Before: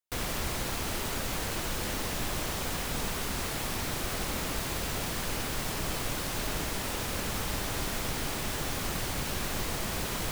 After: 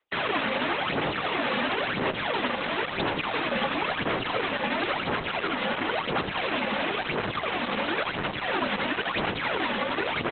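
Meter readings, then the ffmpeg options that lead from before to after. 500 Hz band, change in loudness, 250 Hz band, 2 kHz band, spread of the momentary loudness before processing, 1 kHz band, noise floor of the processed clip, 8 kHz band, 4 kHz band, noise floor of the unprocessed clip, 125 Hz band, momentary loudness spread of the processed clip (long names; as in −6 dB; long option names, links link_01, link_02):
+8.5 dB, +5.0 dB, +6.0 dB, +9.5 dB, 0 LU, +9.0 dB, −34 dBFS, below −40 dB, +4.5 dB, −34 dBFS, −2.5 dB, 2 LU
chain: -filter_complex "[0:a]tremolo=f=11:d=0.42,asplit=2[link_01][link_02];[link_02]adelay=21,volume=-13dB[link_03];[link_01][link_03]amix=inputs=2:normalize=0,aphaser=in_gain=1:out_gain=1:delay=3.3:decay=0.73:speed=0.97:type=sinusoidal,acrossover=split=240|700|2700[link_04][link_05][link_06][link_07];[link_04]acompressor=threshold=-31dB:ratio=4[link_08];[link_05]acompressor=threshold=-39dB:ratio=4[link_09];[link_06]acompressor=threshold=-40dB:ratio=4[link_10];[link_07]acompressor=threshold=-39dB:ratio=4[link_11];[link_08][link_09][link_10][link_11]amix=inputs=4:normalize=0,highpass=frequency=180:width_type=q:width=0.5412,highpass=frequency=180:width_type=q:width=1.307,lowpass=frequency=3500:width_type=q:width=0.5176,lowpass=frequency=3500:width_type=q:width=0.7071,lowpass=frequency=3500:width_type=q:width=1.932,afreqshift=-86,acrossover=split=120[link_12][link_13];[link_13]acontrast=53[link_14];[link_12][link_14]amix=inputs=2:normalize=0,lowshelf=frequency=310:gain=-8.5,asplit=2[link_15][link_16];[link_16]adelay=265,lowpass=frequency=970:poles=1,volume=-15.5dB,asplit=2[link_17][link_18];[link_18]adelay=265,lowpass=frequency=970:poles=1,volume=0.24[link_19];[link_17][link_19]amix=inputs=2:normalize=0[link_20];[link_15][link_20]amix=inputs=2:normalize=0,alimiter=level_in=1.5dB:limit=-24dB:level=0:latency=1:release=35,volume=-1.5dB,volume=9dB" -ar 48000 -c:a libopus -b:a 8k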